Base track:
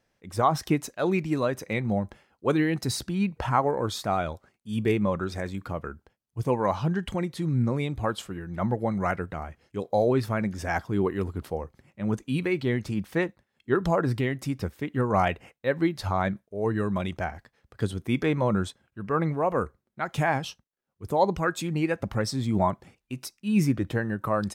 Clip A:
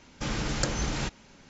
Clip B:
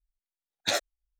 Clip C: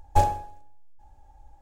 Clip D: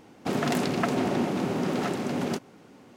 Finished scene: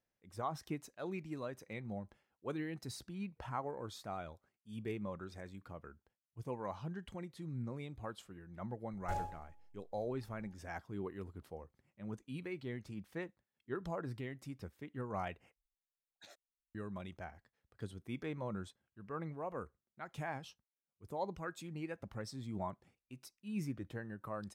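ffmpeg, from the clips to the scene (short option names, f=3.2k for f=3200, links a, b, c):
-filter_complex "[0:a]volume=-17dB[a];[3:a]alimiter=limit=-15.5dB:level=0:latency=1:release=39[b];[2:a]acompressor=threshold=-43dB:ratio=4:attack=0.16:release=501:knee=1:detection=rms[c];[a]asplit=2[d][e];[d]atrim=end=15.564[f];[c]atrim=end=1.19,asetpts=PTS-STARTPTS,volume=-11dB[g];[e]atrim=start=16.746[h];[b]atrim=end=1.61,asetpts=PTS-STARTPTS,volume=-13.5dB,afade=t=in:d=0.004:c=hsin,afade=t=out:st=1.606:d=0.004:c=hsin,adelay=8930[i];[f][g]acrossfade=d=0.004:c1=hsin:c2=hsin[j];[j][h]acrossfade=d=0.004:c1=hsin:c2=hsin[k];[k][i]amix=inputs=2:normalize=0"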